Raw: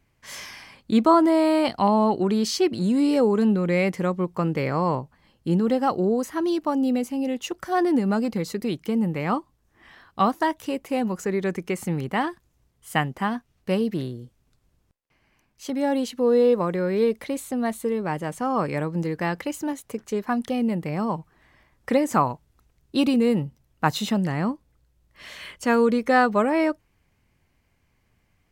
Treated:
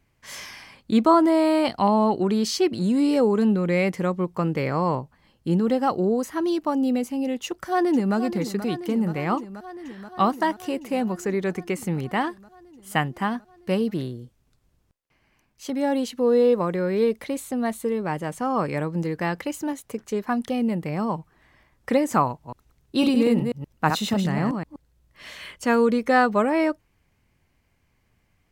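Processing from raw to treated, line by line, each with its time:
7.45–8.16 s: echo throw 480 ms, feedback 80%, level -11.5 dB
22.28–25.31 s: chunks repeated in reverse 124 ms, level -5 dB

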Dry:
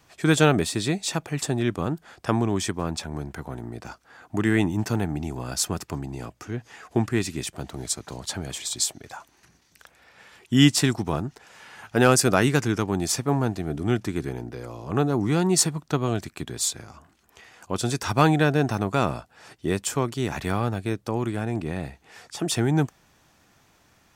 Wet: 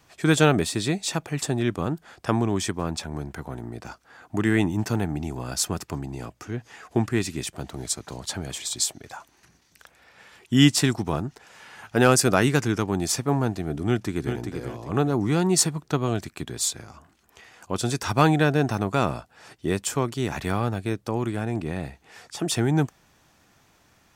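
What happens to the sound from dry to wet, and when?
13.87–14.37 s: echo throw 390 ms, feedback 30%, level -6.5 dB

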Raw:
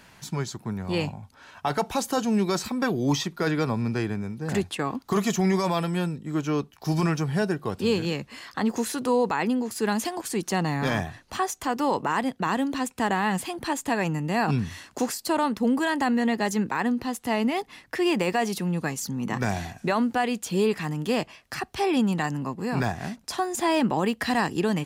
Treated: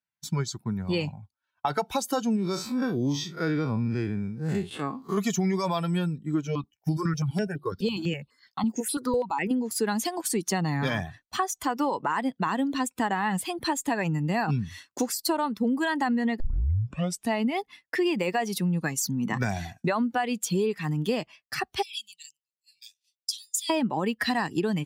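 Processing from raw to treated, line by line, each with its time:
2.36–5.18 s: spectral blur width 101 ms
6.47–9.51 s: stepped phaser 12 Hz 310–6300 Hz
16.40 s: tape start 0.93 s
21.82–23.70 s: inverse Chebyshev high-pass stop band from 1.5 kHz
whole clip: expander on every frequency bin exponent 1.5; expander -46 dBFS; compression 5:1, threshold -32 dBFS; trim +8.5 dB

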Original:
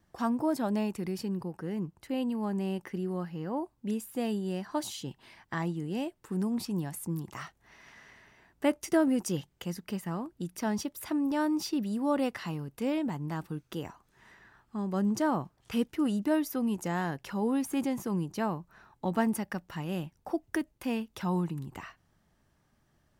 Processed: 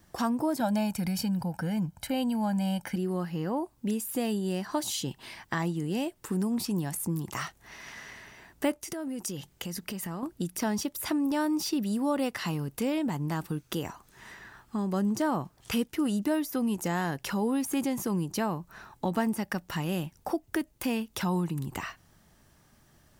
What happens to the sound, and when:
0.60–2.96 s: comb 1.3 ms, depth 91%
8.76–10.23 s: compression, threshold -41 dBFS
whole clip: de-esser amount 85%; treble shelf 4.4 kHz +8 dB; compression 2:1, threshold -39 dBFS; trim +8 dB

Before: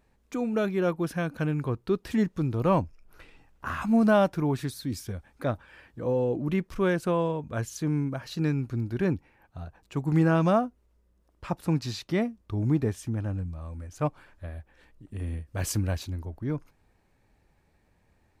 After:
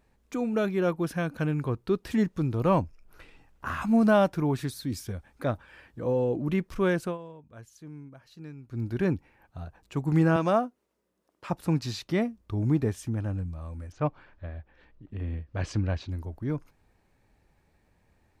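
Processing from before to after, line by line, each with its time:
7.01–8.84 s: dip -16.5 dB, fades 0.17 s
10.36–11.50 s: high-pass 240 Hz
13.92–16.10 s: Bessel low-pass 3.6 kHz, order 4

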